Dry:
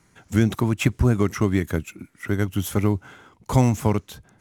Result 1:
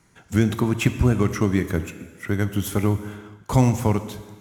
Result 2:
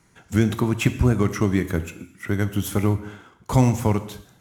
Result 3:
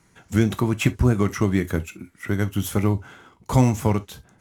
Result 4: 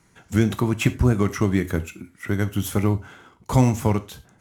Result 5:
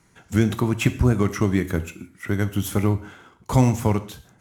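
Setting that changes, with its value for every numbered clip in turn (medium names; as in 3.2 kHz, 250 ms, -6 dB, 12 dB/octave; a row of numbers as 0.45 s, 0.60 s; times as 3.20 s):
gated-style reverb, gate: 500 ms, 290 ms, 90 ms, 130 ms, 190 ms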